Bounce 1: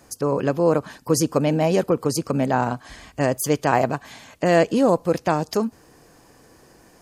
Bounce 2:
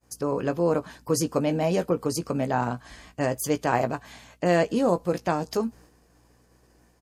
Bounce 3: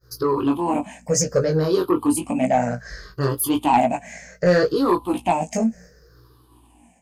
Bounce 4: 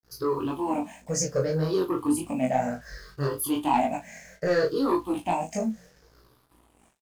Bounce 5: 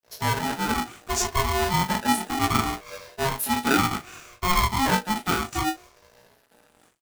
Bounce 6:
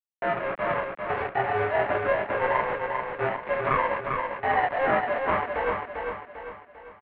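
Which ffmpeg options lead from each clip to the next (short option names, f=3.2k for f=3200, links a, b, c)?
-filter_complex "[0:a]aeval=exprs='val(0)+0.00224*(sin(2*PI*60*n/s)+sin(2*PI*2*60*n/s)/2+sin(2*PI*3*60*n/s)/3+sin(2*PI*4*60*n/s)/4+sin(2*PI*5*60*n/s)/5)':c=same,asplit=2[a][b];[b]adelay=17,volume=-9.5dB[c];[a][c]amix=inputs=2:normalize=0,agate=range=-33dB:threshold=-42dB:ratio=3:detection=peak,volume=-5dB"
-af "afftfilt=real='re*pow(10,22/40*sin(2*PI*(0.58*log(max(b,1)*sr/1024/100)/log(2)-(-0.66)*(pts-256)/sr)))':imag='im*pow(10,22/40*sin(2*PI*(0.58*log(max(b,1)*sr/1024/100)/log(2)-(-0.66)*(pts-256)/sr)))':win_size=1024:overlap=0.75,flanger=delay=15.5:depth=6.8:speed=0.78,asoftclip=type=tanh:threshold=-12.5dB,volume=4.5dB"
-filter_complex "[0:a]acrusher=bits=7:mix=0:aa=0.5,flanger=delay=19.5:depth=4.2:speed=1.8,asplit=2[a][b];[b]adelay=37,volume=-13.5dB[c];[a][c]amix=inputs=2:normalize=0,volume=-3.5dB"
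-af "aeval=exprs='val(0)*sgn(sin(2*PI*540*n/s))':c=same,volume=2dB"
-af "aresample=11025,acrusher=bits=4:mix=0:aa=0.000001,aresample=44100,aecho=1:1:397|794|1191|1588|1985|2382:0.596|0.268|0.121|0.0543|0.0244|0.011,highpass=f=480:t=q:w=0.5412,highpass=f=480:t=q:w=1.307,lowpass=f=2.5k:t=q:w=0.5176,lowpass=f=2.5k:t=q:w=0.7071,lowpass=f=2.5k:t=q:w=1.932,afreqshift=-280"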